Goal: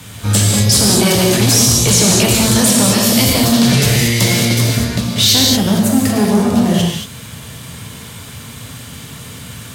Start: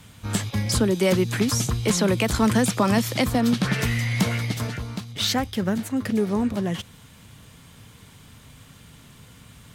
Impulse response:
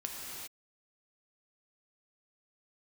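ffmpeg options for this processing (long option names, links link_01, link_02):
-filter_complex "[0:a]acrossover=split=520|2700[link_01][link_02][link_03];[link_01]volume=26dB,asoftclip=hard,volume=-26dB[link_04];[link_02]acompressor=threshold=-44dB:ratio=8[link_05];[link_03]highshelf=frequency=4500:gain=4[link_06];[link_04][link_05][link_06]amix=inputs=3:normalize=0[link_07];[1:a]atrim=start_sample=2205,asetrate=74970,aresample=44100[link_08];[link_07][link_08]afir=irnorm=-1:irlink=0,apsyclip=24.5dB,highpass=76,volume=-5dB"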